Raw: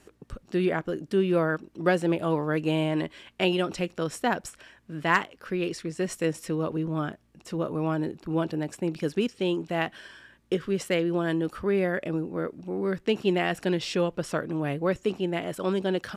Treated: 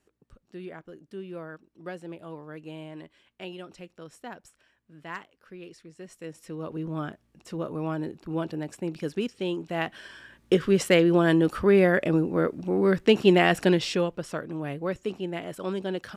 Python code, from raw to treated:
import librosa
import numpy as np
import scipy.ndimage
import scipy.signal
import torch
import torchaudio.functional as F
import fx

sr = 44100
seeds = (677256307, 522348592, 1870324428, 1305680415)

y = fx.gain(x, sr, db=fx.line((6.14, -15.0), (6.87, -3.0), (9.63, -3.0), (10.59, 6.0), (13.65, 6.0), (14.24, -4.0)))